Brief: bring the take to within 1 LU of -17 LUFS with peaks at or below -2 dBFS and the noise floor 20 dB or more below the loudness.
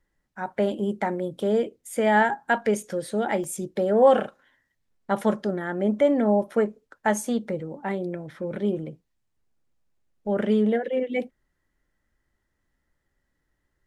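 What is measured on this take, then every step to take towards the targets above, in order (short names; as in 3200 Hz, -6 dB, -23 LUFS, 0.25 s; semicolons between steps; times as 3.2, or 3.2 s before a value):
dropouts 1; longest dropout 1.4 ms; loudness -25.0 LUFS; peak -7.0 dBFS; loudness target -17.0 LUFS
-> interpolate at 3.44, 1.4 ms; gain +8 dB; limiter -2 dBFS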